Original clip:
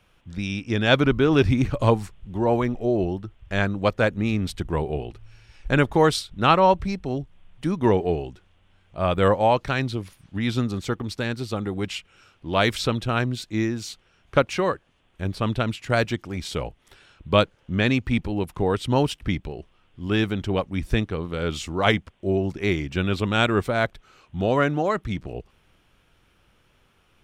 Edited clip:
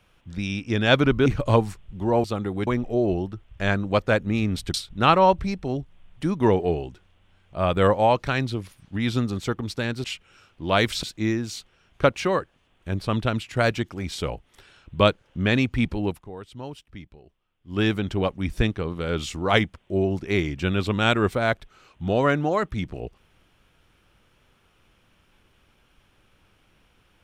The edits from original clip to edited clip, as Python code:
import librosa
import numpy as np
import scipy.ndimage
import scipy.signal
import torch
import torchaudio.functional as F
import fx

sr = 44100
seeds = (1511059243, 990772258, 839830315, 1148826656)

y = fx.edit(x, sr, fx.cut(start_s=1.26, length_s=0.34),
    fx.cut(start_s=4.65, length_s=1.5),
    fx.move(start_s=11.45, length_s=0.43, to_s=2.58),
    fx.cut(start_s=12.87, length_s=0.49),
    fx.fade_down_up(start_s=18.42, length_s=1.7, db=-16.0, fade_s=0.15), tone=tone)